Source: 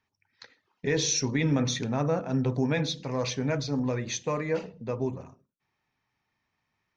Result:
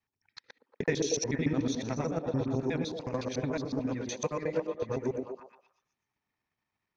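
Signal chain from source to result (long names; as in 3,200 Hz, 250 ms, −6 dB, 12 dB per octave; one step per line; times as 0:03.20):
reversed piece by piece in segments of 73 ms
transient designer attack +9 dB, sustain −4 dB
echo through a band-pass that steps 118 ms, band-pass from 310 Hz, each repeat 0.7 octaves, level 0 dB
level −8 dB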